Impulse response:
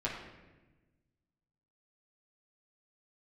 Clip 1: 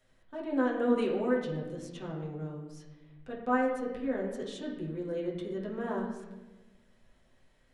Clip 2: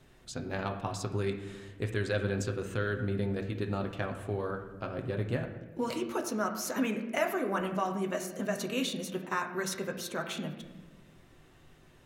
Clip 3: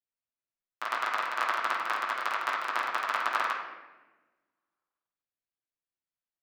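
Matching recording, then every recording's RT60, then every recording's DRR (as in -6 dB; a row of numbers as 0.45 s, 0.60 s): 1; 1.2 s, 1.2 s, 1.2 s; -5.5 dB, 2.5 dB, -10.5 dB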